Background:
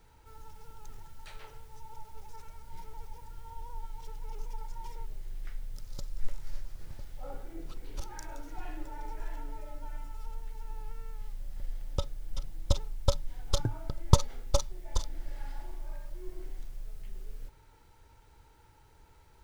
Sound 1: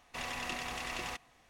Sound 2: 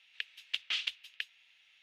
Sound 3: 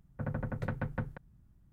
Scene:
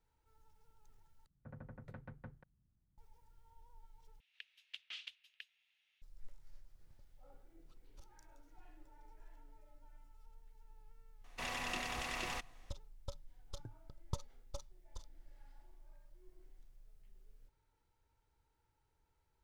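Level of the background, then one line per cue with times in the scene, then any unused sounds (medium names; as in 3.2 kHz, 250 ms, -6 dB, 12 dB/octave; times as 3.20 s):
background -20 dB
1.26 s: replace with 3 -16.5 dB
4.20 s: replace with 2 -14.5 dB
11.24 s: add 1 -2 dB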